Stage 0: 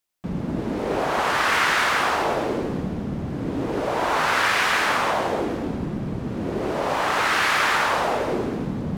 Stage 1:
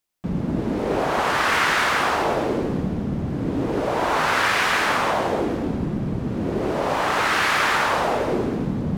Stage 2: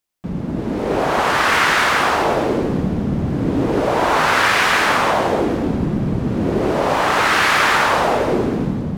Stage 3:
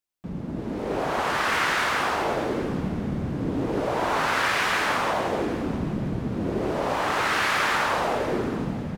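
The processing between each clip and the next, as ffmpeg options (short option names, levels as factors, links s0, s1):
-af "lowshelf=f=460:g=3.5"
-af "dynaudnorm=f=540:g=3:m=2.11"
-af "aecho=1:1:648|1296|1944:0.141|0.0452|0.0145,volume=0.376"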